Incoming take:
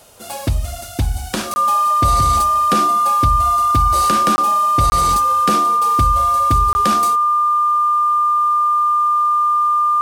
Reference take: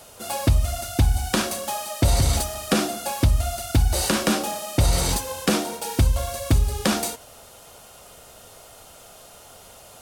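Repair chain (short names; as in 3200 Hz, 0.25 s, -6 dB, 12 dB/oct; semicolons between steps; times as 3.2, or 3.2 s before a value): notch 1200 Hz, Q 30; interpolate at 1.54/4.36/4.9/6.73, 20 ms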